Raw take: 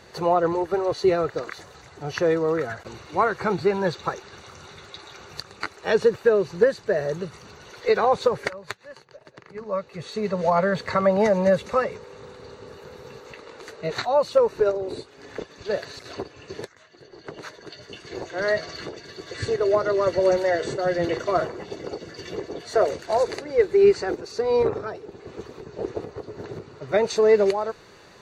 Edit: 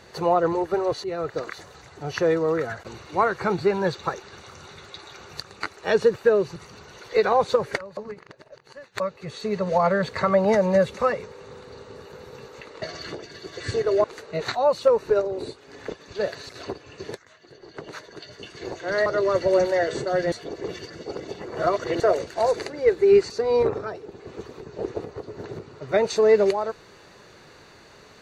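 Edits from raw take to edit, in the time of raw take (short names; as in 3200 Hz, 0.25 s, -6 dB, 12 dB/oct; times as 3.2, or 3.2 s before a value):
1.04–1.38 fade in, from -15.5 dB
6.56–7.28 cut
8.69–9.72 reverse
18.56–19.78 move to 13.54
21.04–22.72 reverse
24.02–24.3 cut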